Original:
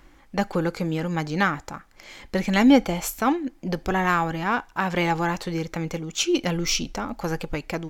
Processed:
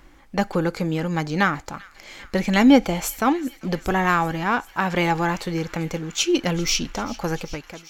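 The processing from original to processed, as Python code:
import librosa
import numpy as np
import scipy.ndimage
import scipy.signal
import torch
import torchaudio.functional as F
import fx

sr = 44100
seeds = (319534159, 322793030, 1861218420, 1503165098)

y = fx.fade_out_tail(x, sr, length_s=0.6)
y = fx.echo_wet_highpass(y, sr, ms=393, feedback_pct=81, hz=1900.0, wet_db=-19.0)
y = y * librosa.db_to_amplitude(2.0)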